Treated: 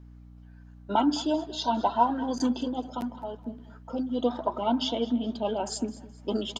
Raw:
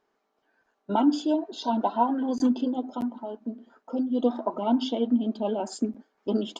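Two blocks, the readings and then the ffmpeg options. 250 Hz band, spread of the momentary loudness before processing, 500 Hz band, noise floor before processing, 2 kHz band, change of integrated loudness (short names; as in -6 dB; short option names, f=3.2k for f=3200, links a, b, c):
-3.5 dB, 11 LU, -1.0 dB, -76 dBFS, n/a, -1.5 dB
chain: -af "tiltshelf=f=680:g=-5,aeval=exprs='val(0)+0.00447*(sin(2*PI*60*n/s)+sin(2*PI*2*60*n/s)/2+sin(2*PI*3*60*n/s)/3+sin(2*PI*4*60*n/s)/4+sin(2*PI*5*60*n/s)/5)':c=same,aecho=1:1:211|422|633:0.126|0.0428|0.0146"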